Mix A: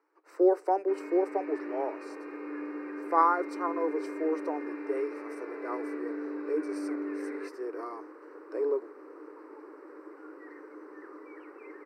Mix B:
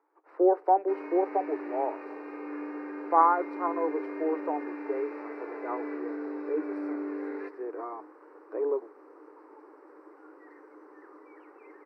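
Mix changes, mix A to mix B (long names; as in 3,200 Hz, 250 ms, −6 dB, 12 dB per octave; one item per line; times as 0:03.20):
speech: add high-frequency loss of the air 450 metres
second sound −6.0 dB
master: add parametric band 800 Hz +8 dB 0.73 octaves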